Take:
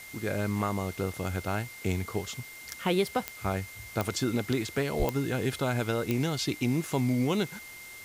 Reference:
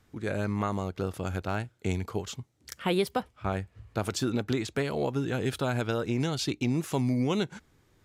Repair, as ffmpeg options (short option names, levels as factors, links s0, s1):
-filter_complex "[0:a]adeclick=t=4,bandreject=f=2100:w=30,asplit=3[s0][s1][s2];[s0]afade=t=out:st=4.98:d=0.02[s3];[s1]highpass=f=140:w=0.5412,highpass=f=140:w=1.3066,afade=t=in:st=4.98:d=0.02,afade=t=out:st=5.1:d=0.02[s4];[s2]afade=t=in:st=5.1:d=0.02[s5];[s3][s4][s5]amix=inputs=3:normalize=0,afftdn=nr=19:nf=-46"